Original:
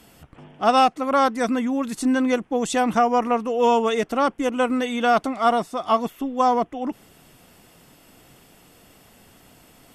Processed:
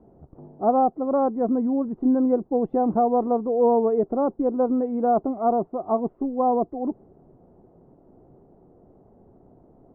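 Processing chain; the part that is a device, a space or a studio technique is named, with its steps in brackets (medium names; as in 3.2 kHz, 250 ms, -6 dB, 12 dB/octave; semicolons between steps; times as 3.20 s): under water (low-pass 780 Hz 24 dB/octave; peaking EQ 380 Hz +8 dB 0.25 oct)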